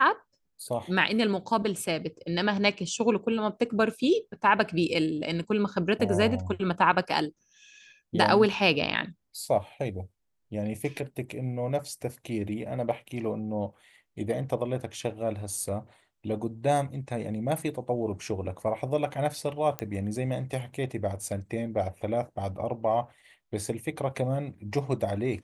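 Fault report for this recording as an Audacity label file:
19.790000	19.790000	pop -15 dBFS

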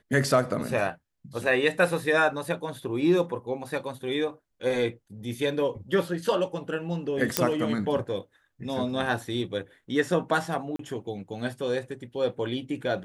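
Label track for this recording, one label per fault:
7.370000	7.370000	pop -2 dBFS
10.760000	10.790000	dropout 33 ms

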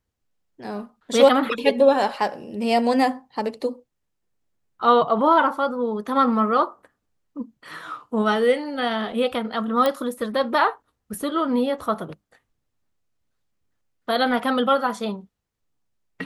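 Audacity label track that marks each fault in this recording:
9.860000	9.860000	pop -9 dBFS

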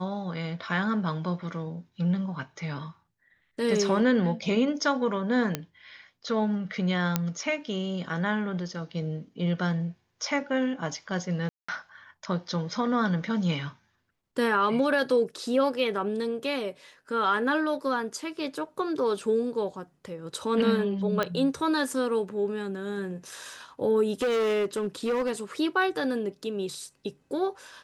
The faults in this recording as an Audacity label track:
5.550000	5.550000	pop -12 dBFS
7.160000	7.160000	pop -9 dBFS
11.490000	11.690000	dropout 195 ms
21.230000	21.230000	pop -13 dBFS
24.120000	25.310000	clipped -23 dBFS

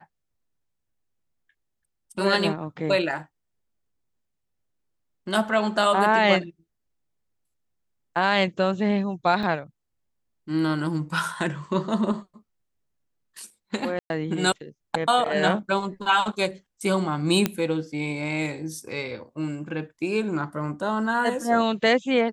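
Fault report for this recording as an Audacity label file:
9.430000	9.430000	dropout 3.1 ms
13.990000	14.100000	dropout 111 ms
17.460000	17.460000	pop -7 dBFS

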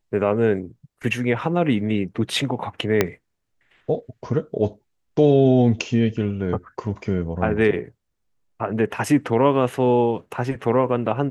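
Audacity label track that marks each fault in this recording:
3.010000	3.010000	pop -3 dBFS

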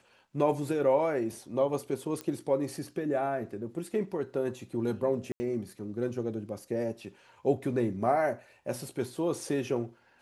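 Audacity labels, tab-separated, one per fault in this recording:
2.210000	2.210000	pop -21 dBFS
5.320000	5.400000	dropout 80 ms

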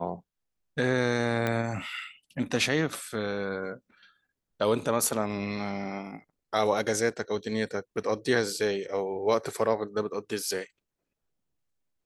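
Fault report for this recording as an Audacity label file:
1.470000	1.470000	pop -15 dBFS

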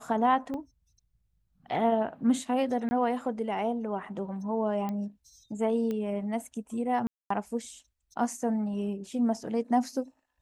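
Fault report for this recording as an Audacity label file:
0.540000	0.540000	dropout 2.5 ms
2.890000	2.910000	dropout 20 ms
4.890000	4.890000	pop -22 dBFS
5.910000	5.910000	pop -22 dBFS
7.070000	7.300000	dropout 234 ms

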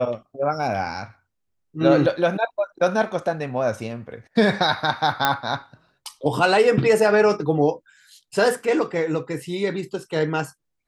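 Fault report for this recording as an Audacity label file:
5.250000	5.250000	pop -3 dBFS

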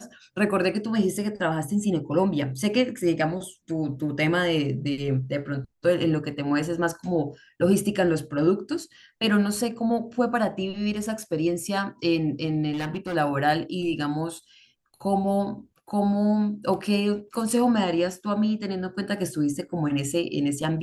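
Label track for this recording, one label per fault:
12.730000	13.160000	clipped -25 dBFS

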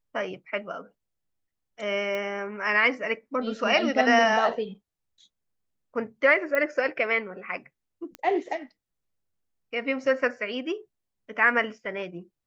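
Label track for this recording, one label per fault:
2.150000	2.150000	pop -20 dBFS
6.550000	6.550000	pop -15 dBFS
8.150000	8.150000	pop -22 dBFS

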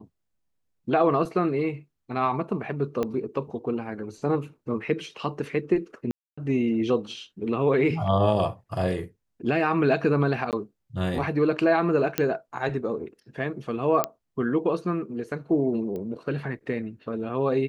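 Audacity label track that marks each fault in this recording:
3.030000	3.030000	pop -15 dBFS
6.110000	6.380000	dropout 265 ms
10.510000	10.530000	dropout 18 ms
12.180000	12.180000	pop -8 dBFS
14.040000	14.040000	pop -8 dBFS
15.960000	15.960000	pop -24 dBFS

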